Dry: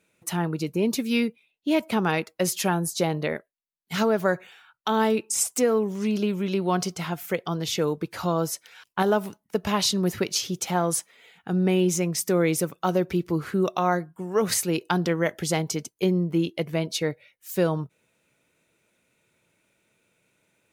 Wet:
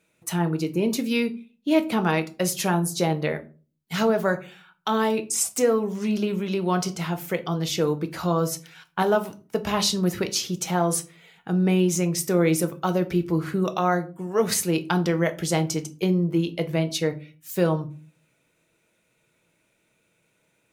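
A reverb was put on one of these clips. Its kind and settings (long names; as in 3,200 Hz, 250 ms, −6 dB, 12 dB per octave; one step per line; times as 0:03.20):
rectangular room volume 200 cubic metres, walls furnished, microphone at 0.63 metres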